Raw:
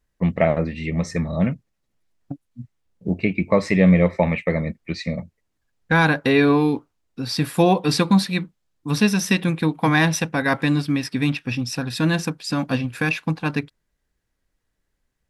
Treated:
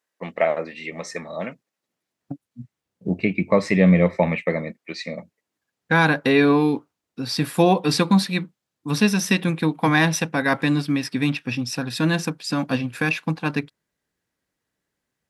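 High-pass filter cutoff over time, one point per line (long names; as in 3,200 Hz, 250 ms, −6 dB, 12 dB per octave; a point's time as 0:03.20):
0:01.51 460 Hz
0:02.32 120 Hz
0:04.17 120 Hz
0:04.91 370 Hz
0:06.08 130 Hz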